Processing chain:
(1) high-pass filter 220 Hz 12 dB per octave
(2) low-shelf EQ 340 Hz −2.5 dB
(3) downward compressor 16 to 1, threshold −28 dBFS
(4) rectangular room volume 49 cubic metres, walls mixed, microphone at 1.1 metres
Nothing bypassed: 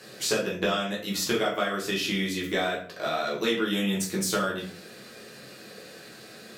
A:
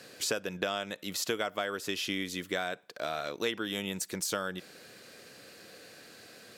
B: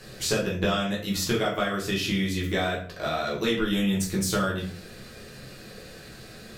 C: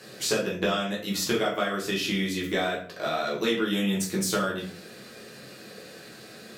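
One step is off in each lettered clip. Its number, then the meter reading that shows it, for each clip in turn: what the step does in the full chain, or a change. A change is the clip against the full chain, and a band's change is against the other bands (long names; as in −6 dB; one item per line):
4, echo-to-direct ratio 5.0 dB to none audible
1, 125 Hz band +6.0 dB
2, 125 Hz band +1.5 dB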